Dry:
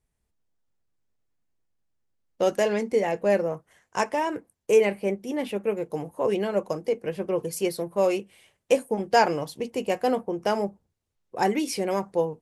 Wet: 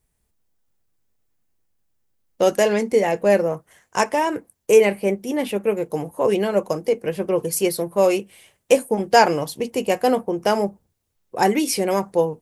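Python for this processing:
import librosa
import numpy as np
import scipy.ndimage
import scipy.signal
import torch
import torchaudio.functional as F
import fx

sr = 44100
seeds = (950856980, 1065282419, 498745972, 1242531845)

y = fx.high_shelf(x, sr, hz=9900.0, db=10.5)
y = F.gain(torch.from_numpy(y), 5.5).numpy()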